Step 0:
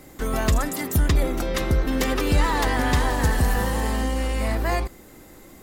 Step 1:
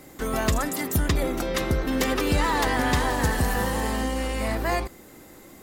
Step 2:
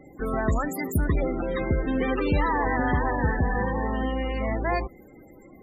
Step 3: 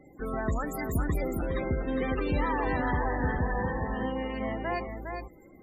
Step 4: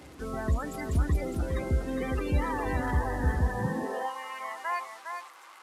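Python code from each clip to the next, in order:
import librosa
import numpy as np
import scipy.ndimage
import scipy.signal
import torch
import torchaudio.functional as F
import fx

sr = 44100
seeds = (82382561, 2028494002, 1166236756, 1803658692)

y1 = fx.low_shelf(x, sr, hz=65.0, db=-9.5)
y2 = fx.spec_topn(y1, sr, count=32)
y3 = y2 + 10.0 ** (-6.0 / 20.0) * np.pad(y2, (int(409 * sr / 1000.0), 0))[:len(y2)]
y3 = F.gain(torch.from_numpy(y3), -5.5).numpy()
y4 = fx.delta_mod(y3, sr, bps=64000, step_db=-41.5)
y4 = fx.filter_sweep_highpass(y4, sr, from_hz=64.0, to_hz=1100.0, start_s=3.49, end_s=4.14, q=3.3)
y4 = F.gain(torch.from_numpy(y4), -2.5).numpy()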